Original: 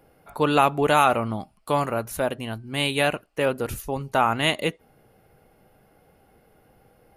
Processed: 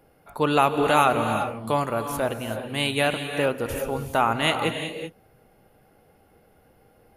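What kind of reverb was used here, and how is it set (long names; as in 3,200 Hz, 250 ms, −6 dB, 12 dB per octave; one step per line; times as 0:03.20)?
reverb whose tail is shaped and stops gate 410 ms rising, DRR 6.5 dB
level −1 dB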